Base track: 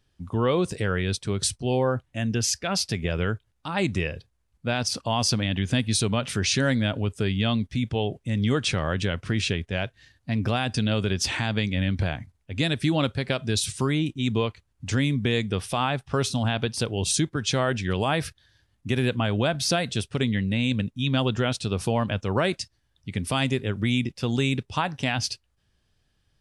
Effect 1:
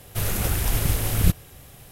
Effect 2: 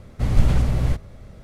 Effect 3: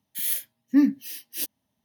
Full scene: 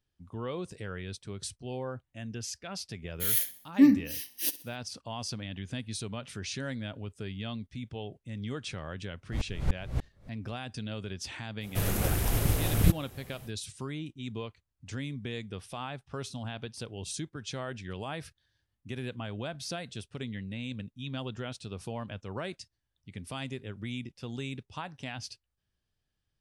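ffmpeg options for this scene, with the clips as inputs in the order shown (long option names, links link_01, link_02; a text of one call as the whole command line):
ffmpeg -i bed.wav -i cue0.wav -i cue1.wav -i cue2.wav -filter_complex "[0:a]volume=-13.5dB[link_01];[3:a]aecho=1:1:64|128|192|256:0.141|0.0664|0.0312|0.0147[link_02];[2:a]aeval=exprs='val(0)*pow(10,-38*if(lt(mod(-3.4*n/s,1),2*abs(-3.4)/1000),1-mod(-3.4*n/s,1)/(2*abs(-3.4)/1000),(mod(-3.4*n/s,1)-2*abs(-3.4)/1000)/(1-2*abs(-3.4)/1000))/20)':channel_layout=same[link_03];[1:a]equalizer=frequency=310:width=0.32:gain=5.5[link_04];[link_02]atrim=end=1.84,asetpts=PTS-STARTPTS,volume=-0.5dB,afade=type=in:duration=0.004:curve=hsin,afade=type=out:start_time=1.836:duration=0.004:curve=hsin,adelay=134505S[link_05];[link_03]atrim=end=1.43,asetpts=PTS-STARTPTS,volume=-5dB,afade=type=in:duration=0.004:curve=hsin,afade=type=out:start_time=1.426:duration=0.004:curve=hsin,adelay=9120[link_06];[link_04]atrim=end=1.91,asetpts=PTS-STARTPTS,volume=-6.5dB,afade=type=in:duration=0.05,afade=type=out:start_time=1.86:duration=0.05,adelay=11600[link_07];[link_01][link_05][link_06][link_07]amix=inputs=4:normalize=0" out.wav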